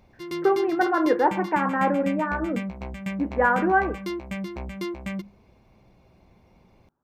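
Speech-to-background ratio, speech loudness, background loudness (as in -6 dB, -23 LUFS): 9.0 dB, -24.0 LUFS, -33.0 LUFS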